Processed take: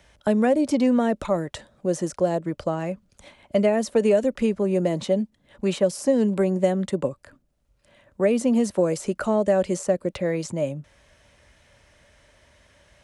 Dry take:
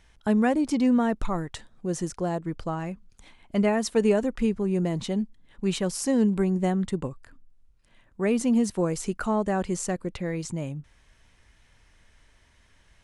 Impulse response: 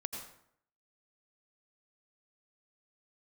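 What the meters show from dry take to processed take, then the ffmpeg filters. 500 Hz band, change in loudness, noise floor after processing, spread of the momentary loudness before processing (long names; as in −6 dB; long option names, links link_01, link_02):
+6.5 dB, +3.0 dB, −66 dBFS, 11 LU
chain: -filter_complex "[0:a]highpass=57,equalizer=frequency=580:width=5.4:gain=14,acrossover=split=200|660|1700[link_01][link_02][link_03][link_04];[link_01]acompressor=threshold=-41dB:ratio=4[link_05];[link_02]acompressor=threshold=-22dB:ratio=4[link_06];[link_03]acompressor=threshold=-38dB:ratio=4[link_07];[link_04]acompressor=threshold=-39dB:ratio=4[link_08];[link_05][link_06][link_07][link_08]amix=inputs=4:normalize=0,volume=4.5dB"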